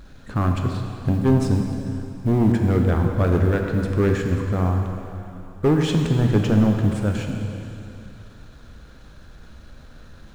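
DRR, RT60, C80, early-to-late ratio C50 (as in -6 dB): 2.0 dB, 2.8 s, 4.5 dB, 3.5 dB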